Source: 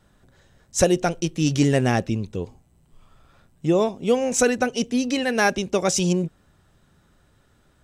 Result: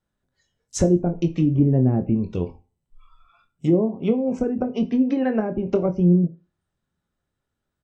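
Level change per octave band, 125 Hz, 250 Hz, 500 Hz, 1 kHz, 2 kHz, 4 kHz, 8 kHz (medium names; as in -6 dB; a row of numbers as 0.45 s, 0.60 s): +4.0 dB, +3.5 dB, -2.0 dB, -8.5 dB, -15.5 dB, under -10 dB, under -10 dB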